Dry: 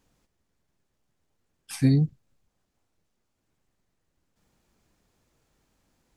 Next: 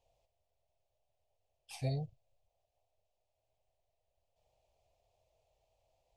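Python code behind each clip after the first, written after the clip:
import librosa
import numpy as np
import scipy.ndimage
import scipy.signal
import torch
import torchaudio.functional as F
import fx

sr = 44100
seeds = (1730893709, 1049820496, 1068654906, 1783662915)

y = fx.curve_eq(x, sr, hz=(110.0, 190.0, 290.0, 650.0, 1500.0, 2600.0, 11000.0), db=(0, -18, -19, 14, -20, 1, -9))
y = y * librosa.db_to_amplitude(-7.0)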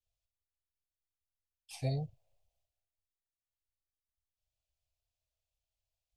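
y = fx.band_widen(x, sr, depth_pct=100)
y = y * librosa.db_to_amplitude(-7.5)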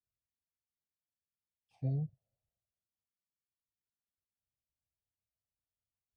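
y = fx.bandpass_q(x, sr, hz=190.0, q=1.8)
y = y * librosa.db_to_amplitude(4.5)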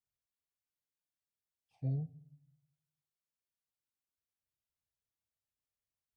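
y = fx.room_shoebox(x, sr, seeds[0], volume_m3=820.0, walls='furnished', distance_m=0.46)
y = y * librosa.db_to_amplitude(-3.0)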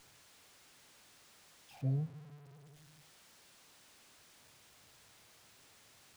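y = x + 0.5 * 10.0 ** (-54.0 / 20.0) * np.sign(x)
y = scipy.signal.sosfilt(scipy.signal.butter(2, 110.0, 'highpass', fs=sr, output='sos'), y)
y = fx.running_max(y, sr, window=3)
y = y * librosa.db_to_amplitude(2.5)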